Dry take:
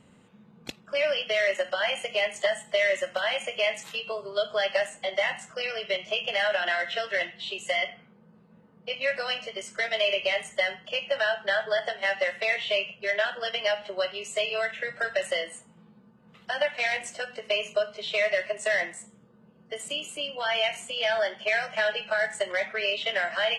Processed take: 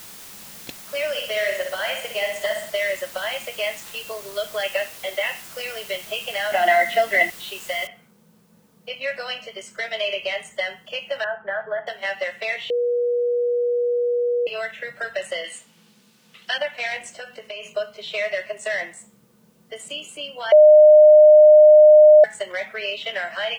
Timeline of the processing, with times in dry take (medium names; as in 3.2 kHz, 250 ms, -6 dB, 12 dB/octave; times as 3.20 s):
1.09–2.70 s: flutter echo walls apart 10.5 m, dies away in 0.62 s
4.63–5.44 s: cabinet simulation 210–4100 Hz, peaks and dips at 480 Hz +5 dB, 790 Hz -3 dB, 2.6 kHz +8 dB
6.52–7.30 s: small resonant body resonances 270/710/2000 Hz, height 16 dB, ringing for 25 ms
7.87 s: noise floor step -41 dB -66 dB
11.24–11.87 s: low-pass 1.8 kHz 24 dB/octave
12.70–14.47 s: bleep 483 Hz -18 dBFS
15.44–16.58 s: frequency weighting D
17.14–17.68 s: compression, threshold -30 dBFS
20.52–22.24 s: bleep 609 Hz -6 dBFS